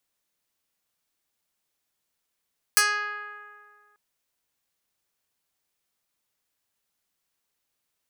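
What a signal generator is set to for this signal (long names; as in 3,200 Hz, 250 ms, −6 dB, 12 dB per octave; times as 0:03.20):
Karplus-Strong string G#4, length 1.19 s, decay 2.10 s, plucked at 0.11, medium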